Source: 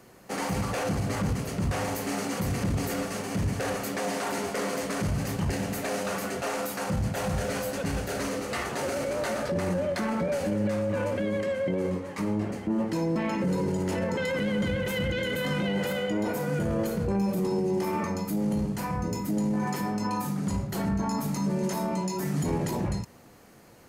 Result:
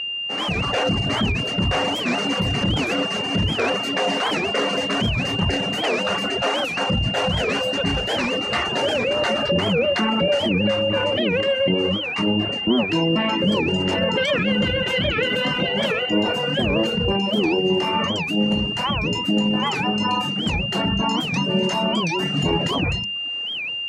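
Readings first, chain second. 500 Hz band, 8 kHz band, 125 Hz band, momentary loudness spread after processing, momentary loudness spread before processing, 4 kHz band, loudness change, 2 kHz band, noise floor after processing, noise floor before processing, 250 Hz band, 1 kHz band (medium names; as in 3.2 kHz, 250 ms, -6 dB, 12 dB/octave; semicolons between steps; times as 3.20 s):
+7.0 dB, 0.0 dB, +4.5 dB, 2 LU, 3 LU, +19.0 dB, +8.5 dB, +13.0 dB, -27 dBFS, -40 dBFS, +6.0 dB, +8.0 dB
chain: hum notches 50/100/150/200/250/300/350/400/450/500 Hz; reverb removal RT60 0.82 s; bass shelf 140 Hz -4 dB; level rider gain up to 10.5 dB; whistle 2.8 kHz -23 dBFS; distance through air 100 m; warped record 78 rpm, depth 250 cents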